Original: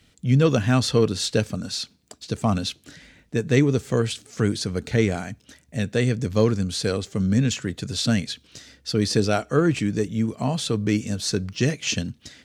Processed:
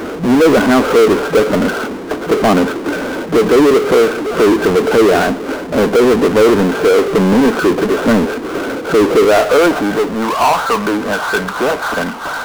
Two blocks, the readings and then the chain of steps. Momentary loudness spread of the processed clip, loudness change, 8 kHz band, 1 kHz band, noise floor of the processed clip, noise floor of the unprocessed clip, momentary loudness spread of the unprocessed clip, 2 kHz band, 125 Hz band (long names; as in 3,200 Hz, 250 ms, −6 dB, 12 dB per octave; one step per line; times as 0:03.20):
9 LU, +10.5 dB, +3.5 dB, +18.0 dB, −24 dBFS, −60 dBFS, 11 LU, +14.5 dB, −2.0 dB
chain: high-pass filter sweep 370 Hz → 930 Hz, 0:09.08–0:10.13
brick-wall band-pass 170–1,600 Hz
in parallel at −2 dB: compressor whose output falls as the input rises −23 dBFS
on the sum: power curve on the samples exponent 0.35